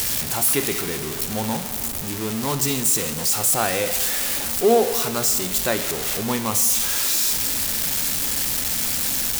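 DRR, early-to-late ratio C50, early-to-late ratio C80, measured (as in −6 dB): 9.5 dB, 11.0 dB, 12.0 dB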